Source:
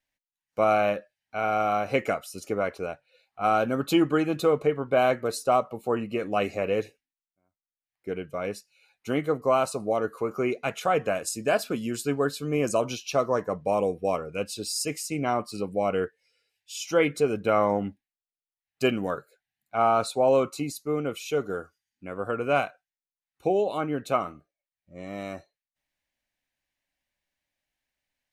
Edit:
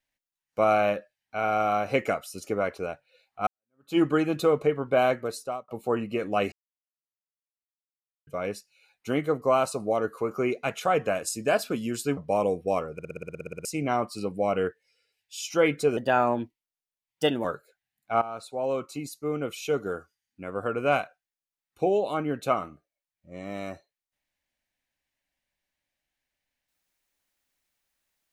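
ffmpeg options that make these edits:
-filter_complex "[0:a]asplit=21[s0][s1][s2][s3][s4][s5][s6][s7][s8][s9][s10][s11][s12][s13][s14][s15][s16][s17][s18][s19][s20];[s0]atrim=end=3.47,asetpts=PTS-STARTPTS,afade=t=out:st=3.466:d=0.004:c=hsin[s21];[s1]atrim=start=3.47:end=5.68,asetpts=PTS-STARTPTS,afade=t=in:d=0.51:c=exp,afade=t=out:st=1.38:d=0.83:c=qsin[s22];[s2]atrim=start=5.68:end=6.52,asetpts=PTS-STARTPTS,afade=t=in:d=0.004:c=hsin,afade=t=out:st=0.836:d=0.004:c=hsin[s23];[s3]atrim=start=6.52:end=8.27,asetpts=PTS-STARTPTS,volume=0[s24];[s4]atrim=start=8.27:end=12.172,asetpts=PTS-STARTPTS,afade=t=in:d=0.004:c=hsin[s25];[s5]atrim=start=13.538:end=14.362[s26];[s6]atrim=start=14.298:end=14.362[s27];[s7]atrim=start=14.298:end=14.362[s28];[s8]atrim=start=14.298:end=14.362[s29];[s9]atrim=start=14.298:end=14.362[s30];[s10]atrim=start=14.298:end=14.362[s31];[s11]atrim=start=14.298:end=14.362[s32];[s12]atrim=start=14.298:end=14.362[s33];[s13]atrim=start=14.298:end=14.362[s34];[s14]atrim=start=14.298:end=14.362[s35];[s15]atrim=start=14.298:end=14.362[s36];[s16]atrim=start=14.298:end=14.362[s37];[s17]atrim=start=15.018:end=17.344[s38];[s18]atrim=start=17.34:end=19.08,asetpts=PTS-STARTPTS,asetrate=52038,aresample=44100[s39];[s19]atrim=start=19.076:end=19.85,asetpts=PTS-STARTPTS,afade=t=out:st=0.77:d=0.004:c=hsin:silence=0.141254[s40];[s20]atrim=start=19.85,asetpts=PTS-STARTPTS,afade=t=in:d=1.42:silence=0.141254[s41];[s21][s22][s23][s24][s25]concat=n=5:v=0:a=1[s42];[s42][s26]acrossfade=d=0.004:c1=hsin:c2=hsin[s43];[s43][s27]acrossfade=d=0.004:c1=hsin:c2=hsin[s44];[s44][s28]acrossfade=d=0.004:c1=hsin:c2=hsin[s45];[s45][s29]acrossfade=d=0.004:c1=hsin:c2=hsin[s46];[s46][s30]acrossfade=d=0.004:c1=hsin:c2=hsin[s47];[s47][s31]acrossfade=d=0.004:c1=hsin:c2=hsin[s48];[s48][s32]acrossfade=d=0.004:c1=hsin:c2=hsin[s49];[s49][s33]acrossfade=d=0.004:c1=hsin:c2=hsin[s50];[s50][s34]acrossfade=d=0.004:c1=hsin:c2=hsin[s51];[s51][s35]acrossfade=d=0.004:c1=hsin:c2=hsin[s52];[s52][s36]acrossfade=d=0.004:c1=hsin:c2=hsin[s53];[s53][s37]acrossfade=d=0.004:c1=hsin:c2=hsin[s54];[s54][s38]acrossfade=d=0.004:c1=hsin:c2=hsin[s55];[s55][s39]acrossfade=d=0.004:c1=hsin:c2=hsin[s56];[s40][s41]concat=n=2:v=0:a=1[s57];[s56][s57]acrossfade=d=0.004:c1=hsin:c2=hsin"

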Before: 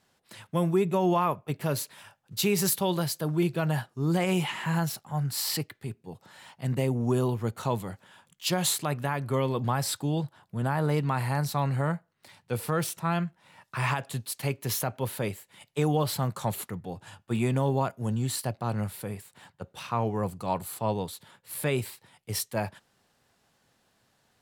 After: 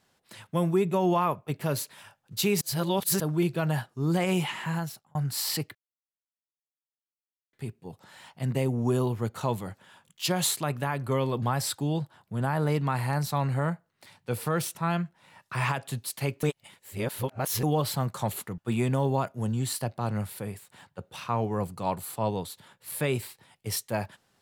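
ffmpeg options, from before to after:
-filter_complex "[0:a]asplit=8[s0][s1][s2][s3][s4][s5][s6][s7];[s0]atrim=end=2.612[s8];[s1]atrim=start=2.608:end=3.202,asetpts=PTS-STARTPTS,areverse[s9];[s2]atrim=start=3.198:end=5.15,asetpts=PTS-STARTPTS,afade=t=out:st=1.142:d=0.81:c=qsin[s10];[s3]atrim=start=5.15:end=5.75,asetpts=PTS-STARTPTS,afade=t=in:d=0.004:c=hsin,afade=t=out:st=0.596:d=0.004:c=hsin,apad=pad_dur=1.78[s11];[s4]atrim=start=5.75:end=14.652,asetpts=PTS-STARTPTS,afade=t=in:d=0.004:c=hsin[s12];[s5]atrim=start=14.648:end=15.852,asetpts=PTS-STARTPTS,areverse[s13];[s6]atrim=start=15.848:end=16.802[s14];[s7]atrim=start=17.208[s15];[s8][s9]acrossfade=d=0.004:c1=hsin:c2=hsin[s16];[s10][s11][s12]concat=n=3:v=0:a=1[s17];[s16][s17]acrossfade=d=0.004:c1=hsin:c2=hsin[s18];[s18][s13]acrossfade=d=0.004:c1=hsin:c2=hsin[s19];[s19][s14]acrossfade=d=0.004:c1=hsin:c2=hsin[s20];[s20][s15]acrossfade=d=0.004:c1=hsin:c2=hsin"

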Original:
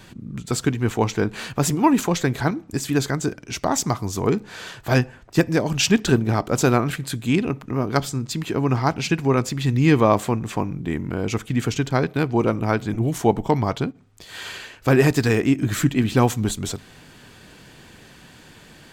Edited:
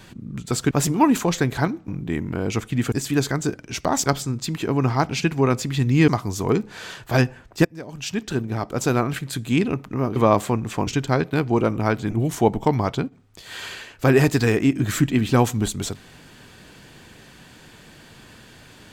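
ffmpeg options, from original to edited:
-filter_complex "[0:a]asplit=9[s0][s1][s2][s3][s4][s5][s6][s7][s8];[s0]atrim=end=0.712[s9];[s1]atrim=start=1.538:end=2.712[s10];[s2]atrim=start=10.658:end=11.702[s11];[s3]atrim=start=2.708:end=3.852[s12];[s4]atrim=start=7.928:end=9.952[s13];[s5]atrim=start=3.848:end=5.42,asetpts=PTS-STARTPTS,afade=t=out:st=1.568:d=0.004:c=hsin:silence=0.0891251[s14];[s6]atrim=start=5.42:end=7.932,asetpts=PTS-STARTPTS,afade=t=in:d=1.82:silence=0.0891251[s15];[s7]atrim=start=9.948:end=10.662[s16];[s8]atrim=start=11.698[s17];[s9][s10]acrossfade=d=0.004:c1=hsin:c2=hsin[s18];[s18][s11]acrossfade=d=0.004:c1=hsin:c2=hsin[s19];[s19][s12]acrossfade=d=0.004:c1=hsin:c2=hsin[s20];[s20][s13]acrossfade=d=0.004:c1=hsin:c2=hsin[s21];[s14][s15]concat=n=2:v=0:a=1[s22];[s21][s22]acrossfade=d=0.004:c1=hsin:c2=hsin[s23];[s23][s16]acrossfade=d=0.004:c1=hsin:c2=hsin[s24];[s24][s17]acrossfade=d=0.004:c1=hsin:c2=hsin"

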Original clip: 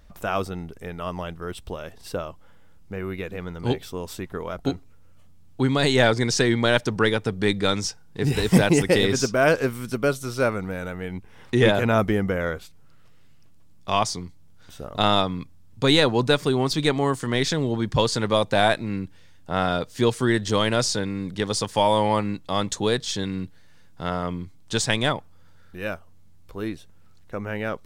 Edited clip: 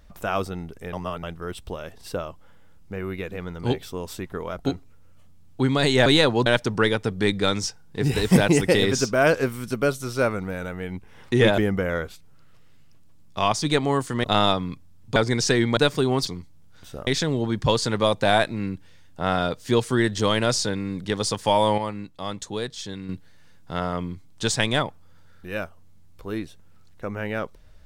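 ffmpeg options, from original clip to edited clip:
-filter_complex "[0:a]asplit=14[s0][s1][s2][s3][s4][s5][s6][s7][s8][s9][s10][s11][s12][s13];[s0]atrim=end=0.932[s14];[s1]atrim=start=0.928:end=1.232,asetpts=PTS-STARTPTS,areverse[s15];[s2]atrim=start=1.228:end=6.062[s16];[s3]atrim=start=15.848:end=16.252[s17];[s4]atrim=start=6.668:end=11.792[s18];[s5]atrim=start=12.088:end=14.132[s19];[s6]atrim=start=16.748:end=17.372[s20];[s7]atrim=start=14.928:end=15.852[s21];[s8]atrim=start=6.058:end=6.672[s22];[s9]atrim=start=16.248:end=16.752[s23];[s10]atrim=start=14.128:end=14.932[s24];[s11]atrim=start=17.368:end=22.082[s25];[s12]atrim=start=22.078:end=23.392,asetpts=PTS-STARTPTS,volume=0.447[s26];[s13]atrim=start=23.388[s27];[s14][s15]acrossfade=d=0.004:c1=hsin:c2=hsin[s28];[s28][s16]acrossfade=d=0.004:c1=hsin:c2=hsin[s29];[s29][s17]acrossfade=d=0.004:c1=hsin:c2=hsin[s30];[s30][s18]acrossfade=d=0.004:c1=hsin:c2=hsin[s31];[s31][s19]acrossfade=d=0.004:c1=hsin:c2=hsin[s32];[s32][s20]acrossfade=d=0.004:c1=hsin:c2=hsin[s33];[s33][s21]acrossfade=d=0.004:c1=hsin:c2=hsin[s34];[s34][s22]acrossfade=d=0.004:c1=hsin:c2=hsin[s35];[s35][s23]acrossfade=d=0.004:c1=hsin:c2=hsin[s36];[s36][s24]acrossfade=d=0.004:c1=hsin:c2=hsin[s37];[s37][s25]acrossfade=d=0.004:c1=hsin:c2=hsin[s38];[s38][s26]acrossfade=d=0.004:c1=hsin:c2=hsin[s39];[s39][s27]acrossfade=d=0.004:c1=hsin:c2=hsin"

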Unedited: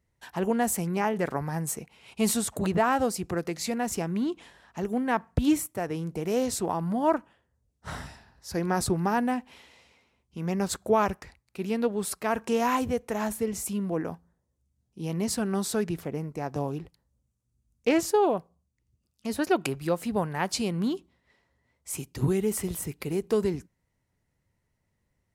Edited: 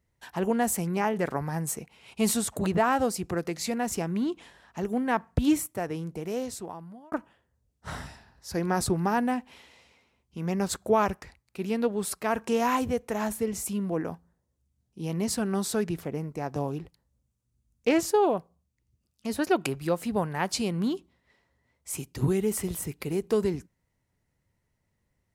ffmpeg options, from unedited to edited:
-filter_complex "[0:a]asplit=2[s0][s1];[s0]atrim=end=7.12,asetpts=PTS-STARTPTS,afade=t=out:st=5.75:d=1.37[s2];[s1]atrim=start=7.12,asetpts=PTS-STARTPTS,afade=t=in:d=0.004:c=hsin[s3];[s2][s3]concat=n=2:v=0:a=1"

